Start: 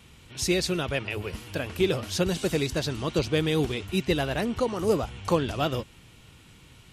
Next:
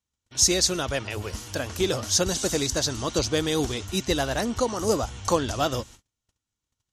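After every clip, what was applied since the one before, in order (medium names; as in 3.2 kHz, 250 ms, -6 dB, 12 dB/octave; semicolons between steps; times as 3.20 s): gate -46 dBFS, range -37 dB; fifteen-band graphic EQ 160 Hz -9 dB, 400 Hz -5 dB, 2.5 kHz -8 dB, 6.3 kHz +11 dB; trim +4 dB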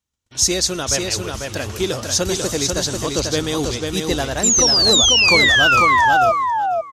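painted sound fall, 4.43–6.32 s, 640–7500 Hz -18 dBFS; feedback delay 493 ms, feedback 15%, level -4 dB; trim +3 dB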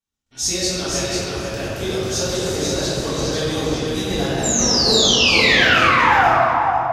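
reverberation RT60 2.4 s, pre-delay 4 ms, DRR -10 dB; trim -11 dB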